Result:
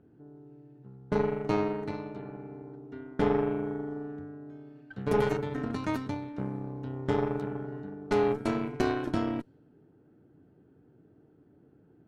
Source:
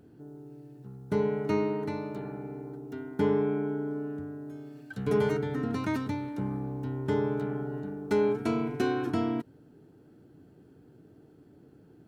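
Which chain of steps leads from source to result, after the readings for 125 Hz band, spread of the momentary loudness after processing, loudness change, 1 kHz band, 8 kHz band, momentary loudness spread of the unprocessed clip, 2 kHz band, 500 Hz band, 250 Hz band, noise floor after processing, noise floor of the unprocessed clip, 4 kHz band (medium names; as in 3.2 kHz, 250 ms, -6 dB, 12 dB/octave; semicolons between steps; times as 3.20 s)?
-1.5 dB, 17 LU, -0.5 dB, +2.0 dB, no reading, 17 LU, 0.0 dB, -1.0 dB, -1.5 dB, -61 dBFS, -57 dBFS, +0.5 dB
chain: level-controlled noise filter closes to 2.1 kHz, open at -25 dBFS; Chebyshev shaper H 2 -7 dB, 7 -25 dB, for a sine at -15 dBFS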